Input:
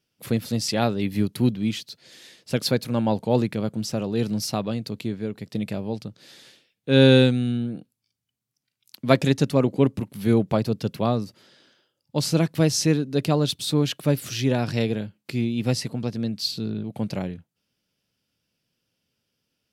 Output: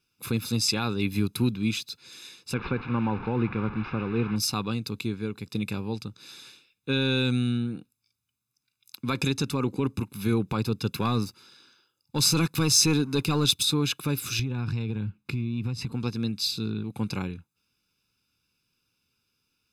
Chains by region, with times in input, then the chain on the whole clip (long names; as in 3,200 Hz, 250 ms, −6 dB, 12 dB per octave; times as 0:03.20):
0:02.54–0:04.36: linear delta modulator 32 kbit/s, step −30 dBFS + low-pass filter 2,400 Hz 24 dB per octave
0:10.92–0:13.63: high-shelf EQ 4,800 Hz +3.5 dB + leveller curve on the samples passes 1
0:14.39–0:15.92: bass and treble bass +11 dB, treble −9 dB + downward compressor 12 to 1, threshold −24 dBFS
whole clip: brickwall limiter −13.5 dBFS; parametric band 170 Hz −7.5 dB 1.9 octaves; comb filter 0.8 ms, depth 87%